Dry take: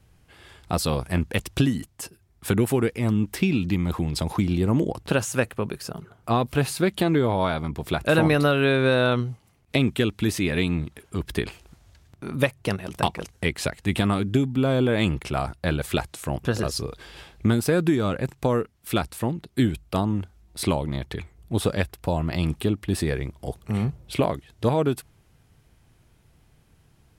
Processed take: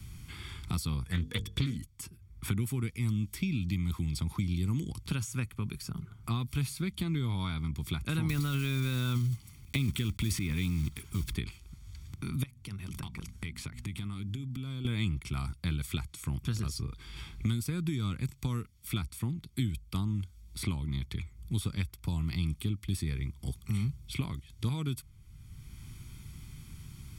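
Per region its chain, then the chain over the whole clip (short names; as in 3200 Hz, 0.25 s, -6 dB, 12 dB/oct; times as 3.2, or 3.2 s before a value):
1.04–1.77 notches 50/100/150/200/250/300/350/400/450 Hz + small resonant body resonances 470/1700/3400 Hz, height 17 dB, ringing for 65 ms + Doppler distortion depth 0.41 ms
8.29–11.35 block floating point 5-bit + transient shaper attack +2 dB, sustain +12 dB
12.43–14.85 notches 60/120/180/240 Hz + compressor 4:1, threshold -36 dBFS
whole clip: passive tone stack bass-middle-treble 6-0-2; comb 0.9 ms, depth 56%; three-band squash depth 70%; gain +5.5 dB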